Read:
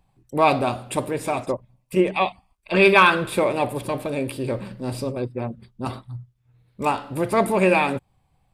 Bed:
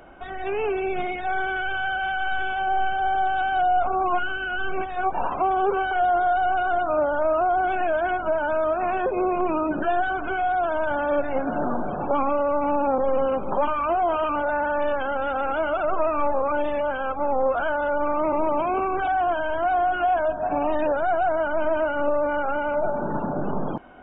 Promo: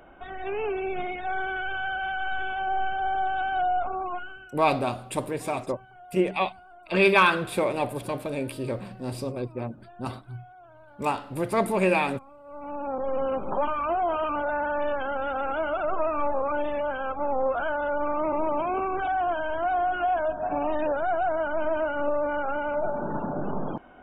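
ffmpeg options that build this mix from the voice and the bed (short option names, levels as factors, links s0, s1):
-filter_complex "[0:a]adelay=4200,volume=0.596[s0];[1:a]volume=10,afade=t=out:st=3.64:d=0.93:silence=0.0668344,afade=t=in:st=12.43:d=0.94:silence=0.0630957[s1];[s0][s1]amix=inputs=2:normalize=0"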